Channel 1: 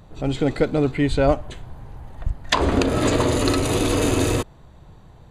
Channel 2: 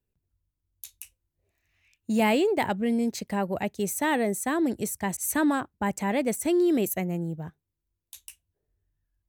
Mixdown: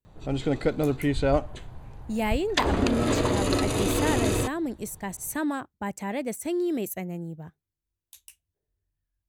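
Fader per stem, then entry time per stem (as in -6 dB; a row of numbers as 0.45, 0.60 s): -5.0, -4.5 dB; 0.05, 0.00 s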